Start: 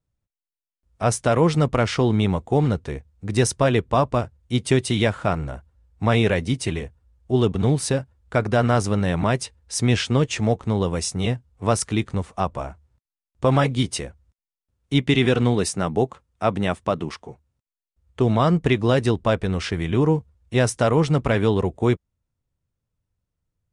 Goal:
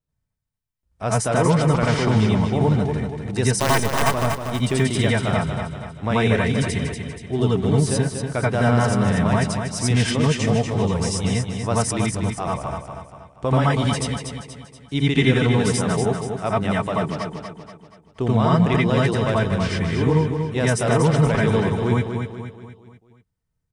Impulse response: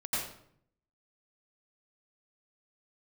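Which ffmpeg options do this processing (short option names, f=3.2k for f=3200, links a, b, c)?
-filter_complex "[0:a]asettb=1/sr,asplit=3[a][b][c];[a]atrim=end=3.554[d];[b]atrim=start=3.55:end=4.13,asetpts=PTS-STARTPTS,afade=t=in:d=0.004:c=qsin,afade=t=out:st=0.576:d=0.004:c=qsin,acrusher=bits=3:dc=4:mix=0:aa=0.000001[e];[c]atrim=start=4.126[f];[d][e]acrossfade=d=0.004:c1=hsin:c2=qsin[g];[g][f]acrossfade=d=0.004:c1=qsin:c2=hsin,aecho=1:1:239|478|717|956|1195:0.473|0.213|0.0958|0.0431|0.0194[h];[1:a]atrim=start_sample=2205,atrim=end_sample=3969[i];[h][i]afir=irnorm=-1:irlink=0"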